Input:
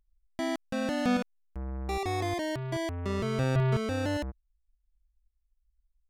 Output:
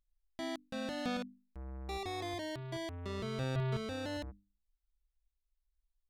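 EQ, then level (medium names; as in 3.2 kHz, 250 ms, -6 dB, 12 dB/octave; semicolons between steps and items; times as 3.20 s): peaking EQ 3.8 kHz +7 dB 0.53 oct; hum notches 50/100/150/200/250/300 Hz; -8.5 dB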